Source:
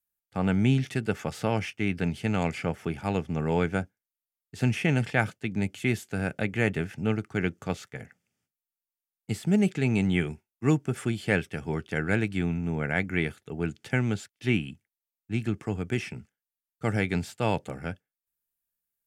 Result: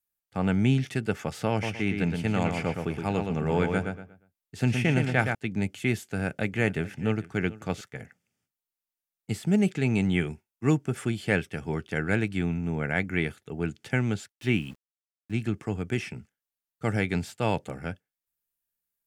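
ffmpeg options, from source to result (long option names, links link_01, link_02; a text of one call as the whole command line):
ffmpeg -i in.wav -filter_complex "[0:a]asettb=1/sr,asplit=3[link_01][link_02][link_03];[link_01]atrim=end=1.514[link_04];[link_02]atrim=start=1.51:end=5.35,asetpts=PTS-STARTPTS,afade=type=in:duration=0.004:curve=qsin,afade=type=out:start_time=3.836:duration=0.004:curve=qsin,asplit=2[link_05][link_06];[link_06]adelay=118,lowpass=frequency=4700:poles=1,volume=-5dB,asplit=2[link_07][link_08];[link_08]adelay=118,lowpass=frequency=4700:poles=1,volume=0.29,asplit=2[link_09][link_10];[link_10]adelay=118,lowpass=frequency=4700:poles=1,volume=0.29,asplit=2[link_11][link_12];[link_12]adelay=118,lowpass=frequency=4700:poles=1,volume=0.29[link_13];[link_05][link_07][link_09][link_11][link_13]amix=inputs=5:normalize=0,atrim=end_sample=169344[link_14];[link_03]atrim=start=5.346[link_15];[link_04][link_14]acrossfade=duration=0.004:curve1=hsin:curve2=qsin[link_16];[link_16][link_15]acrossfade=duration=0.004:curve1=qsin:curve2=hsin,asettb=1/sr,asplit=3[link_17][link_18][link_19];[link_17]atrim=end=5.994[link_20];[link_18]atrim=start=5.99:end=7.81,asetpts=PTS-STARTPTS,afade=type=in:duration=0.004:curve=qsin,afade=type=out:start_time=1.816:duration=0.004:curve=qsin,aecho=1:1:434:0.112,atrim=end_sample=80262[link_21];[link_19]atrim=start=7.806[link_22];[link_20][link_21]acrossfade=duration=0.004:curve1=hsin:curve2=qsin[link_23];[link_23][link_22]acrossfade=duration=0.004:curve1=qsin:curve2=hsin,asettb=1/sr,asplit=3[link_24][link_25][link_26];[link_24]atrim=end=14.324[link_27];[link_25]atrim=start=14.32:end=15.32,asetpts=PTS-STARTPTS,afade=type=in:duration=0.004:curve=qsin,afade=type=out:start_time=0.996:duration=0.004:curve=qsin,aeval=exprs='val(0)*gte(abs(val(0)),0.00376)':channel_layout=same[link_28];[link_26]atrim=start=15.316[link_29];[link_27][link_28]acrossfade=duration=0.004:curve1=hsin:curve2=qsin[link_30];[link_30][link_29]acrossfade=duration=0.004:curve1=qsin:curve2=hsin" out.wav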